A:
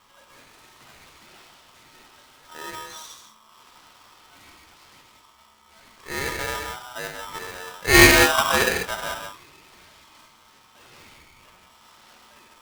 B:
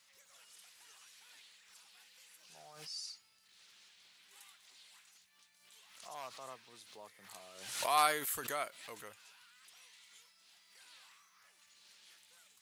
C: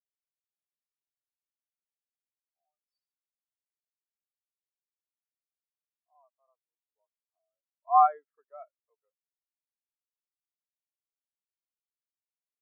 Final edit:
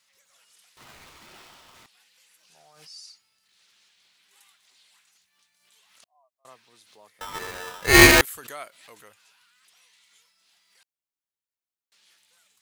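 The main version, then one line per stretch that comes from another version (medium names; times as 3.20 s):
B
0.77–1.86 s: from A
6.04–6.45 s: from C
7.21–8.21 s: from A
10.83–11.92 s: from C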